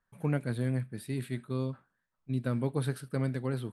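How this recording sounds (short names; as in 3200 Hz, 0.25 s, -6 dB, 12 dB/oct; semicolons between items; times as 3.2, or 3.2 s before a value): noise floor -83 dBFS; spectral tilt -7.5 dB/oct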